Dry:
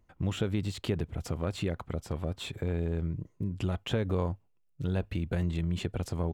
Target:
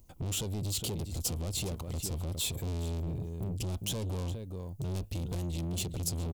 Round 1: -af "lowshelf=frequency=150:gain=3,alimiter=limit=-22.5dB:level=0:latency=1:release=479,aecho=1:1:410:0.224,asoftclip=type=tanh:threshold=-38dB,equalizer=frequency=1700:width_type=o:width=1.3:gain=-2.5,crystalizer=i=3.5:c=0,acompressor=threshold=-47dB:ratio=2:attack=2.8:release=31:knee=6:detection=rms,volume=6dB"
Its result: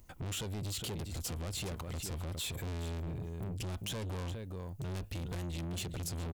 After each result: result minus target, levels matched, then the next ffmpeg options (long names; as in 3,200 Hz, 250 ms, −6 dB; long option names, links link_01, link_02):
downward compressor: peak gain reduction +9 dB; 2,000 Hz band +6.0 dB
-af "lowshelf=frequency=150:gain=3,alimiter=limit=-22.5dB:level=0:latency=1:release=479,aecho=1:1:410:0.224,asoftclip=type=tanh:threshold=-38dB,equalizer=frequency=1700:width_type=o:width=1.3:gain=-2.5,crystalizer=i=3.5:c=0,volume=6dB"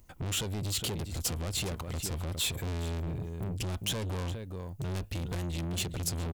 2,000 Hz band +6.5 dB
-af "lowshelf=frequency=150:gain=3,alimiter=limit=-22.5dB:level=0:latency=1:release=479,aecho=1:1:410:0.224,asoftclip=type=tanh:threshold=-38dB,equalizer=frequency=1700:width_type=o:width=1.3:gain=-14.5,crystalizer=i=3.5:c=0,volume=6dB"